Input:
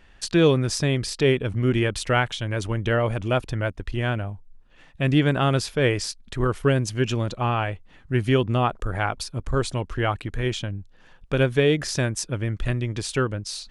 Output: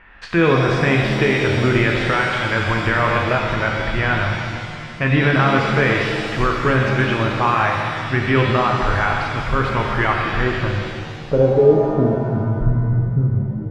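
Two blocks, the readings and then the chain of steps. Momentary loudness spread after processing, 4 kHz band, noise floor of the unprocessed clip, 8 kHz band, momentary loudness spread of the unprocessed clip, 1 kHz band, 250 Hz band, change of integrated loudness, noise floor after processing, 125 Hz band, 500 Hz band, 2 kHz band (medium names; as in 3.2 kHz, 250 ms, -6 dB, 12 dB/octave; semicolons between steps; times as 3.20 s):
7 LU, +3.0 dB, -52 dBFS, -8.0 dB, 9 LU, +9.5 dB, +5.0 dB, +6.0 dB, -31 dBFS, +5.0 dB, +5.5 dB, +10.5 dB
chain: low-pass sweep 2.1 kHz -> 160 Hz, 10.12–12.62 s; peaking EQ 1.1 kHz +8.5 dB 1.1 oct; peak limiter -11 dBFS, peak gain reduction 11 dB; pitch-shifted reverb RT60 2.3 s, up +7 st, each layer -8 dB, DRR -0.5 dB; trim +2 dB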